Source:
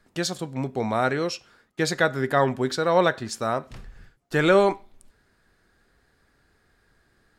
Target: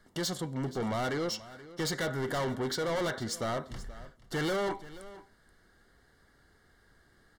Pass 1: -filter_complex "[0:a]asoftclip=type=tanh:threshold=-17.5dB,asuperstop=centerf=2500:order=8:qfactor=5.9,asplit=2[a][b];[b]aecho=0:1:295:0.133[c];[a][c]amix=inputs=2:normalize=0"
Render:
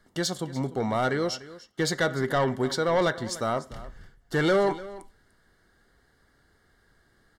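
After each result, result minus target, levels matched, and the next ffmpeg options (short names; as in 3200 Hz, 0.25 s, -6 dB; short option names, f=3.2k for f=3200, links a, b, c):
echo 0.184 s early; soft clip: distortion -7 dB
-filter_complex "[0:a]asoftclip=type=tanh:threshold=-17.5dB,asuperstop=centerf=2500:order=8:qfactor=5.9,asplit=2[a][b];[b]aecho=0:1:479:0.133[c];[a][c]amix=inputs=2:normalize=0"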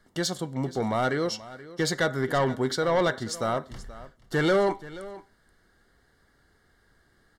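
soft clip: distortion -7 dB
-filter_complex "[0:a]asoftclip=type=tanh:threshold=-29dB,asuperstop=centerf=2500:order=8:qfactor=5.9,asplit=2[a][b];[b]aecho=0:1:479:0.133[c];[a][c]amix=inputs=2:normalize=0"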